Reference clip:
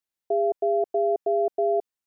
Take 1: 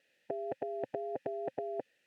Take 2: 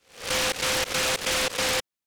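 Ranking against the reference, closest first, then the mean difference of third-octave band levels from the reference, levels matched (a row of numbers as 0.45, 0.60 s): 1, 2; 8.5, 31.0 dB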